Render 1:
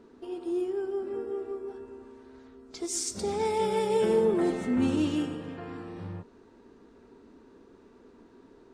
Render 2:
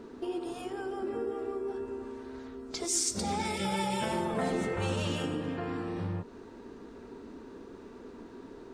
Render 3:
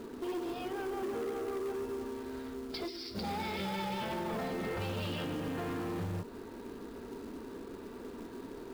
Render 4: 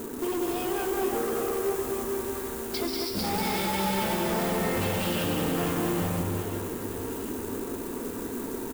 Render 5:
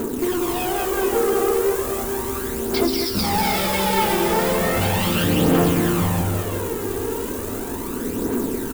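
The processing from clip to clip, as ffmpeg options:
ffmpeg -i in.wav -filter_complex "[0:a]afftfilt=real='re*lt(hypot(re,im),0.224)':imag='im*lt(hypot(re,im),0.224)':win_size=1024:overlap=0.75,asplit=2[link_01][link_02];[link_02]acompressor=threshold=-42dB:ratio=6,volume=3dB[link_03];[link_01][link_03]amix=inputs=2:normalize=0" out.wav
ffmpeg -i in.wav -af "alimiter=level_in=2dB:limit=-24dB:level=0:latency=1:release=109,volume=-2dB,aresample=11025,asoftclip=type=tanh:threshold=-34.5dB,aresample=44100,acrusher=bits=4:mode=log:mix=0:aa=0.000001,volume=2.5dB" out.wav
ffmpeg -i in.wav -af "aexciter=amount=4.5:drive=4.8:freq=6400,asoftclip=type=hard:threshold=-35dB,aecho=1:1:190|456|828.4|1350|2080:0.631|0.398|0.251|0.158|0.1,volume=8dB" out.wav
ffmpeg -i in.wav -af "aphaser=in_gain=1:out_gain=1:delay=2.6:decay=0.44:speed=0.36:type=triangular,volume=7dB" out.wav

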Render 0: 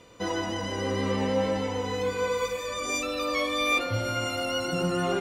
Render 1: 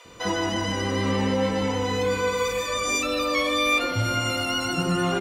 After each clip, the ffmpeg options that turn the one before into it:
ffmpeg -i in.wav -filter_complex "[0:a]asplit=2[link_01][link_02];[link_02]alimiter=level_in=1dB:limit=-24dB:level=0:latency=1:release=23,volume=-1dB,volume=2.5dB[link_03];[link_01][link_03]amix=inputs=2:normalize=0,acrossover=split=570[link_04][link_05];[link_04]adelay=50[link_06];[link_06][link_05]amix=inputs=2:normalize=0" out.wav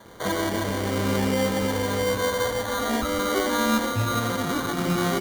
ffmpeg -i in.wav -af "acrusher=samples=17:mix=1:aa=0.000001" out.wav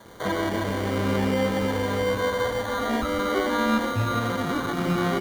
ffmpeg -i in.wav -filter_complex "[0:a]acrossover=split=3700[link_01][link_02];[link_02]acompressor=threshold=-40dB:ratio=4:attack=1:release=60[link_03];[link_01][link_03]amix=inputs=2:normalize=0" out.wav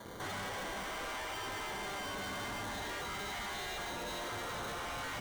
ffmpeg -i in.wav -filter_complex "[0:a]asplit=2[link_01][link_02];[link_02]asoftclip=type=tanh:threshold=-24dB,volume=-4dB[link_03];[link_01][link_03]amix=inputs=2:normalize=0,afftfilt=real='re*lt(hypot(re,im),0.2)':imag='im*lt(hypot(re,im),0.2)':win_size=1024:overlap=0.75,asoftclip=type=hard:threshold=-33.5dB,volume=-5dB" out.wav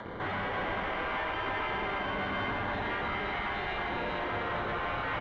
ffmpeg -i in.wav -filter_complex "[0:a]lowpass=frequency=2800:width=0.5412,lowpass=frequency=2800:width=1.3066,acrossover=split=700[link_01][link_02];[link_02]acompressor=mode=upward:threshold=-51dB:ratio=2.5[link_03];[link_01][link_03]amix=inputs=2:normalize=0,aecho=1:1:335:0.473,volume=7dB" out.wav

